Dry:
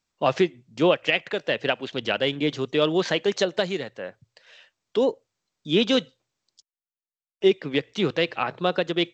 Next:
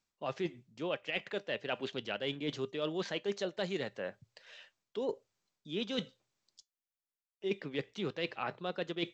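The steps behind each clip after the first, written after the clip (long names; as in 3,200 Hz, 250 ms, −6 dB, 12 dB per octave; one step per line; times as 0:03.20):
reversed playback
downward compressor 12 to 1, threshold −29 dBFS, peak gain reduction 16 dB
reversed playback
tuned comb filter 200 Hz, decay 0.17 s, harmonics all, mix 40%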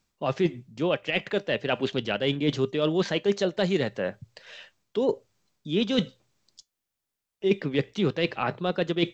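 low-shelf EQ 290 Hz +8 dB
level +8.5 dB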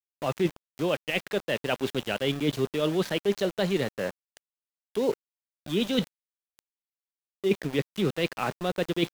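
centre clipping without the shift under −33 dBFS
level −1.5 dB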